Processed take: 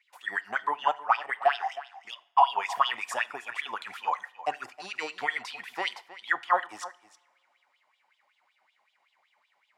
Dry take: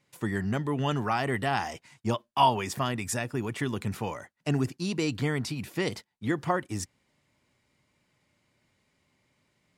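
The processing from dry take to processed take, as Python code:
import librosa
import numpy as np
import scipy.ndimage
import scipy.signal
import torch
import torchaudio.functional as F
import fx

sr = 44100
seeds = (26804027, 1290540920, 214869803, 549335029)

p1 = fx.high_shelf(x, sr, hz=3800.0, db=-12.0)
p2 = fx.level_steps(p1, sr, step_db=14, at=(0.88, 2.5))
p3 = fx.filter_lfo_highpass(p2, sr, shape='sine', hz=5.3, low_hz=730.0, high_hz=3500.0, q=6.9)
p4 = p3 + fx.echo_single(p3, sr, ms=315, db=-16.0, dry=0)
y = fx.rev_double_slope(p4, sr, seeds[0], early_s=0.49, late_s=2.5, knee_db=-22, drr_db=16.5)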